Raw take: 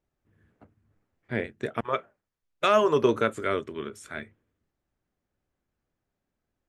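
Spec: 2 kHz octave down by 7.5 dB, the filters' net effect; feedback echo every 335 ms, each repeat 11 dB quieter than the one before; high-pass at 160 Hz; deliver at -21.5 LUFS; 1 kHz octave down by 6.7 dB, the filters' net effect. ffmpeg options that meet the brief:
-af "highpass=160,equalizer=f=1000:t=o:g=-5.5,equalizer=f=2000:t=o:g=-8.5,aecho=1:1:335|670|1005:0.282|0.0789|0.0221,volume=2.51"

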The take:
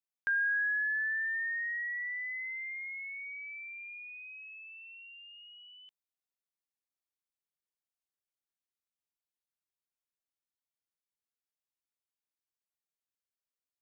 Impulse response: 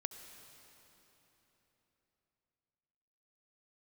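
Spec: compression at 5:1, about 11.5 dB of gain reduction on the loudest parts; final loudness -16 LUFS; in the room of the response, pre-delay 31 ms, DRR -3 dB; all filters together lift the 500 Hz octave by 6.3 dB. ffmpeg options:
-filter_complex "[0:a]equalizer=f=500:t=o:g=8,acompressor=threshold=0.00794:ratio=5,asplit=2[s0][s1];[1:a]atrim=start_sample=2205,adelay=31[s2];[s1][s2]afir=irnorm=-1:irlink=0,volume=1.68[s3];[s0][s3]amix=inputs=2:normalize=0,volume=11.9"

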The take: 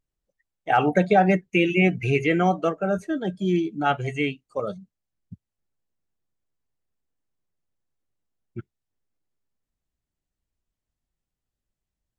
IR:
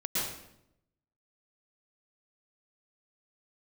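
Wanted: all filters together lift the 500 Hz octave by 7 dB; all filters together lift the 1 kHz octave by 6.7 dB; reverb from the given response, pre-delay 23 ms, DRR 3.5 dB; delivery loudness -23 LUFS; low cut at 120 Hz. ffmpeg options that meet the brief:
-filter_complex "[0:a]highpass=120,equalizer=f=500:t=o:g=7.5,equalizer=f=1000:t=o:g=6,asplit=2[s0][s1];[1:a]atrim=start_sample=2205,adelay=23[s2];[s1][s2]afir=irnorm=-1:irlink=0,volume=0.299[s3];[s0][s3]amix=inputs=2:normalize=0,volume=0.447"

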